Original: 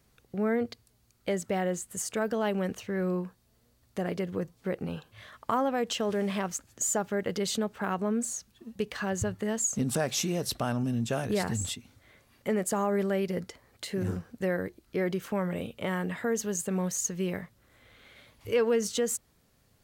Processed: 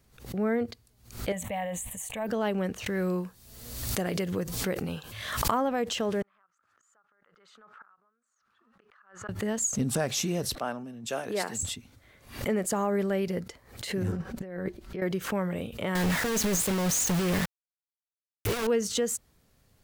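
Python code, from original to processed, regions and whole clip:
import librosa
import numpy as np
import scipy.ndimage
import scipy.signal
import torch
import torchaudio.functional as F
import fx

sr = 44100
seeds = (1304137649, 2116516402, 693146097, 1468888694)

y = fx.chain(x, sr, fx.peak_eq(hz=150.0, db=-14.5, octaves=0.43),
    fx.fixed_phaser(hz=1400.0, stages=6),
    fx.sustainer(db_per_s=29.0), at=(1.32, 2.27))
y = fx.chain(y, sr, fx.high_shelf(hz=3000.0, db=10.0),
    fx.pre_swell(db_per_s=49.0), at=(2.86, 5.51))
y = fx.chain(y, sr, fx.gate_flip(shuts_db=-25.0, range_db=-25),
    fx.bandpass_q(hz=1300.0, q=6.1),
    fx.pre_swell(db_per_s=34.0), at=(6.22, 9.29))
y = fx.chain(y, sr, fx.highpass(hz=330.0, slope=12),
    fx.band_widen(depth_pct=100), at=(10.55, 11.63))
y = fx.chain(y, sr, fx.lowpass(hz=3800.0, slope=6),
    fx.comb(ms=5.3, depth=0.45),
    fx.over_compress(threshold_db=-36.0, ratio=-1.0), at=(14.12, 15.02))
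y = fx.chain(y, sr, fx.over_compress(threshold_db=-34.0, ratio=-1.0),
    fx.quant_companded(bits=2), at=(15.95, 18.67))
y = fx.low_shelf(y, sr, hz=63.0, db=6.5)
y = fx.pre_swell(y, sr, db_per_s=120.0)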